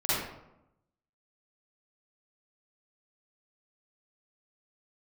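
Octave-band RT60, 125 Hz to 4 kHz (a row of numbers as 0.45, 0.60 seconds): 1.0, 1.0, 0.90, 0.85, 0.65, 0.50 seconds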